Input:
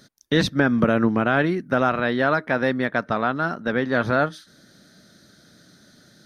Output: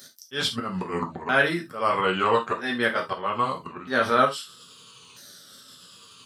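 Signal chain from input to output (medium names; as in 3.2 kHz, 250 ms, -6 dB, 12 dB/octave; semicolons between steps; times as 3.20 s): sawtooth pitch modulation -6.5 st, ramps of 1291 ms; slow attack 216 ms; RIAA curve recording; gated-style reverb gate 100 ms falling, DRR 1 dB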